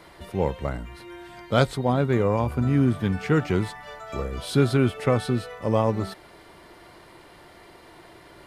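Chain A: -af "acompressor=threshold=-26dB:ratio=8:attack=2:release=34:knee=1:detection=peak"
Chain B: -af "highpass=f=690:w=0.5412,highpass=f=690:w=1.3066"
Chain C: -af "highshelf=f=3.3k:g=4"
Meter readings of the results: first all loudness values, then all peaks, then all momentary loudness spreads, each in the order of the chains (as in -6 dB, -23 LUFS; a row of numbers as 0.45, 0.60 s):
-32.5, -33.0, -24.5 LUFS; -17.0, -10.0, -6.0 dBFS; 18, 21, 15 LU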